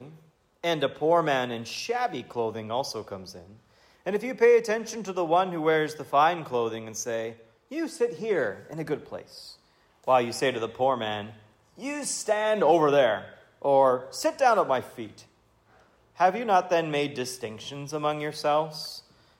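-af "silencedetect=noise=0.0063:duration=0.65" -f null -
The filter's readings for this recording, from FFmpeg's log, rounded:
silence_start: 15.24
silence_end: 16.18 | silence_duration: 0.94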